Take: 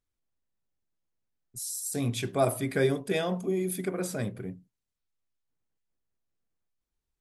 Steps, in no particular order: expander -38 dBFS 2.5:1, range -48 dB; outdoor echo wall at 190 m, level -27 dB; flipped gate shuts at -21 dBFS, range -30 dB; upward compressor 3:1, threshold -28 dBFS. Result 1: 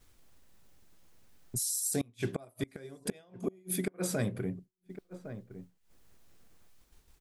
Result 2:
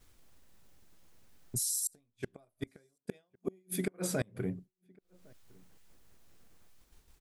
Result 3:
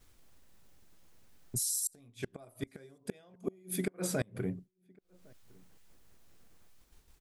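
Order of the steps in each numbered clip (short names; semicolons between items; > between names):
flipped gate > outdoor echo > upward compressor > expander; upward compressor > flipped gate > expander > outdoor echo; upward compressor > expander > flipped gate > outdoor echo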